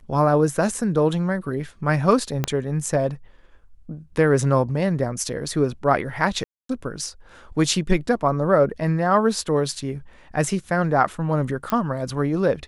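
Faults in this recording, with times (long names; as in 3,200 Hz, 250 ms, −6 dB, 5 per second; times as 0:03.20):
0:02.44: click −8 dBFS
0:06.44–0:06.69: drop-out 253 ms
0:11.70: click −9 dBFS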